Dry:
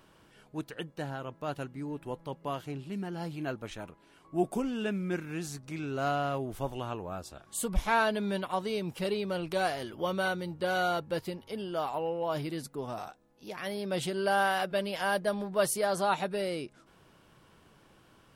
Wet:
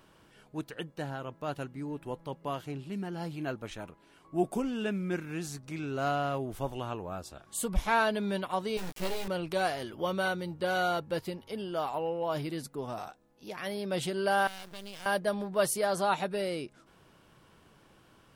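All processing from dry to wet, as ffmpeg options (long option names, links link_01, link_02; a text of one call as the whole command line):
ffmpeg -i in.wav -filter_complex "[0:a]asettb=1/sr,asplit=3[link_01][link_02][link_03];[link_01]atrim=end=8.774[link_04];[link_02]atrim=start=8.77:end=9.28,asetpts=PTS-STARTPTS,afade=type=in:duration=0.004:curve=qsin,afade=type=out:start_time=0.506:duration=0.004:curve=qsin,acrusher=bits=4:dc=4:mix=0:aa=0.000001,asplit=2[link_05][link_06];[link_06]adelay=16,volume=-3.5dB[link_07];[link_05][link_07]amix=inputs=2:normalize=0,atrim=end_sample=22491[link_08];[link_03]atrim=start=9.276[link_09];[link_04][link_08]acrossfade=duration=0.004:curve1=hsin:curve2=qsin[link_10];[link_10][link_09]acrossfade=duration=0.004:curve1=qsin:curve2=hsin,asettb=1/sr,asplit=3[link_11][link_12][link_13];[link_11]atrim=end=14.474[link_14];[link_12]atrim=start=14.47:end=15.06,asetpts=PTS-STARTPTS,afade=type=in:duration=0.004:curve=qsin,afade=type=out:start_time=0.586:duration=0.004:curve=qsin,highshelf=frequency=12000:gain=-9.5,acrossover=split=160|3000[link_15][link_16][link_17];[link_16]acompressor=threshold=-48dB:ratio=3:attack=3.2:release=140:knee=2.83:detection=peak[link_18];[link_15][link_18][link_17]amix=inputs=3:normalize=0,acrusher=bits=6:dc=4:mix=0:aa=0.000001[link_19];[link_13]atrim=start=15.056[link_20];[link_14][link_19]acrossfade=duration=0.004:curve1=hsin:curve2=qsin[link_21];[link_21][link_20]acrossfade=duration=0.004:curve1=qsin:curve2=hsin" out.wav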